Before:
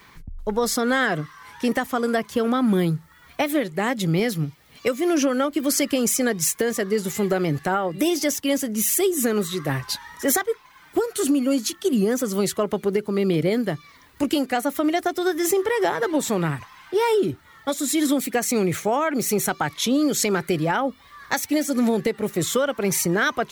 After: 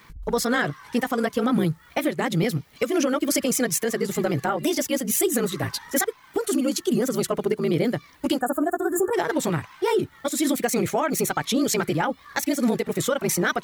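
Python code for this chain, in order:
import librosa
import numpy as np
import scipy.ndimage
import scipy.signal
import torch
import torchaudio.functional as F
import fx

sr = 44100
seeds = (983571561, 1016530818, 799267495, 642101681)

y = fx.spec_box(x, sr, start_s=14.49, length_s=1.26, low_hz=1800.0, high_hz=6700.0, gain_db=-28)
y = fx.stretch_grains(y, sr, factor=0.58, grain_ms=34.0)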